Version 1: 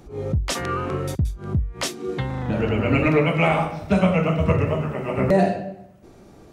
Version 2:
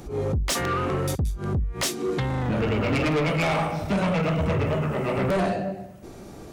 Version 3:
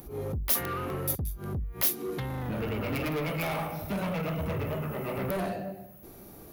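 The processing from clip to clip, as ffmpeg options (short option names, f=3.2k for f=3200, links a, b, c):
-filter_complex "[0:a]highshelf=f=5.8k:g=5.5,asplit=2[a][b];[b]acompressor=threshold=-28dB:ratio=6,volume=-1dB[c];[a][c]amix=inputs=2:normalize=0,asoftclip=type=tanh:threshold=-20dB"
-af "aexciter=amount=12.3:drive=6.1:freq=11k,volume=-8dB"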